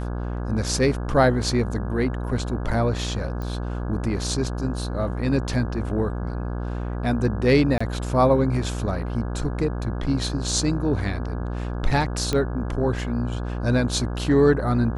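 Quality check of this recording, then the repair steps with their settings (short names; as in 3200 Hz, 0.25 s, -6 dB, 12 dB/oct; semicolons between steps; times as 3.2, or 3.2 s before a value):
buzz 60 Hz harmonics 28 -28 dBFS
3.42 pop -21 dBFS
7.78–7.8 gap 25 ms
12.33 pop -11 dBFS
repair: de-click; de-hum 60 Hz, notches 28; interpolate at 7.78, 25 ms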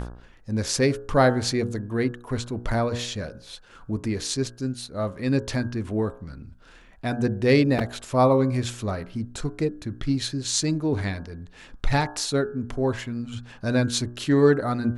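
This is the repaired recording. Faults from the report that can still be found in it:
none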